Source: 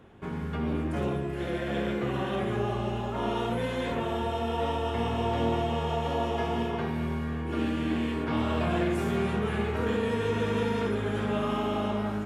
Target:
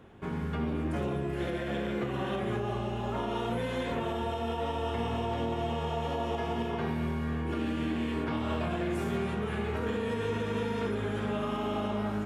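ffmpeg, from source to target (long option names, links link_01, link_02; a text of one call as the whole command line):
ffmpeg -i in.wav -af "alimiter=limit=-23dB:level=0:latency=1:release=187" out.wav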